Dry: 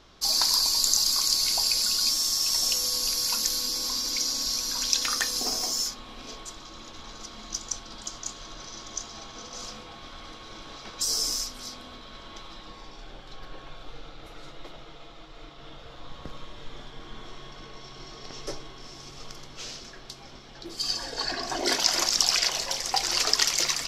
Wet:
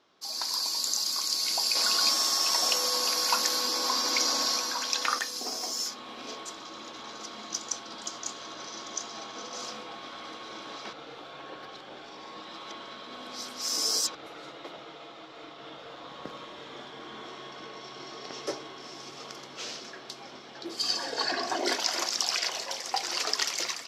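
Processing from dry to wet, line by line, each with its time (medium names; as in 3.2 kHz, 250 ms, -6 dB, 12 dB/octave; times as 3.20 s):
1.75–5.19 s: peaking EQ 950 Hz +10.5 dB 2.8 oct
10.93–14.15 s: reverse
whole clip: high-pass 260 Hz 12 dB/octave; treble shelf 4.3 kHz -7 dB; level rider gain up to 12.5 dB; trim -8.5 dB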